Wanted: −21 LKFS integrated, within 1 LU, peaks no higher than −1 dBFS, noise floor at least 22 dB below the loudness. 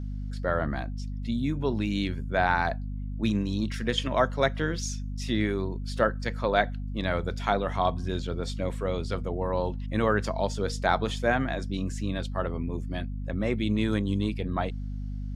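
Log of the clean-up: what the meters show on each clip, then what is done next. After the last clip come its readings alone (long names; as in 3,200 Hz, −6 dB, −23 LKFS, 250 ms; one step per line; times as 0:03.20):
mains hum 50 Hz; hum harmonics up to 250 Hz; level of the hum −31 dBFS; integrated loudness −29.0 LKFS; sample peak −7.5 dBFS; target loudness −21.0 LKFS
→ mains-hum notches 50/100/150/200/250 Hz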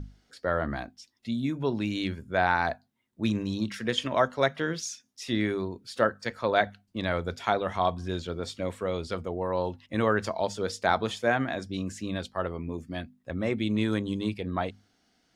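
mains hum none found; integrated loudness −29.5 LKFS; sample peak −8.0 dBFS; target loudness −21.0 LKFS
→ level +8.5 dB
brickwall limiter −1 dBFS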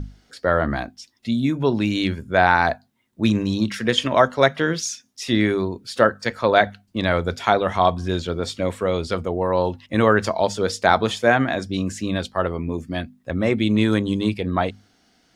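integrated loudness −21.5 LKFS; sample peak −1.0 dBFS; background noise floor −63 dBFS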